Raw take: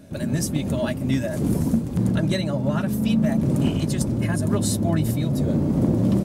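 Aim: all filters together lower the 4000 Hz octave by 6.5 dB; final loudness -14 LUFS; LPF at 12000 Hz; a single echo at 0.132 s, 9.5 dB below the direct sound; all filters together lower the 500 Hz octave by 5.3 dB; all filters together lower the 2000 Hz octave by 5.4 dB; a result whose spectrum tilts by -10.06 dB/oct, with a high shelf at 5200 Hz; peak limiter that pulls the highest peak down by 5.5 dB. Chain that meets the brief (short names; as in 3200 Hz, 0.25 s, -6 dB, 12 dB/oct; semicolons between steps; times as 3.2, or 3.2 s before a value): LPF 12000 Hz; bell 500 Hz -7 dB; bell 2000 Hz -5 dB; bell 4000 Hz -8 dB; high shelf 5200 Hz +3 dB; limiter -16.5 dBFS; echo 0.132 s -9.5 dB; gain +11 dB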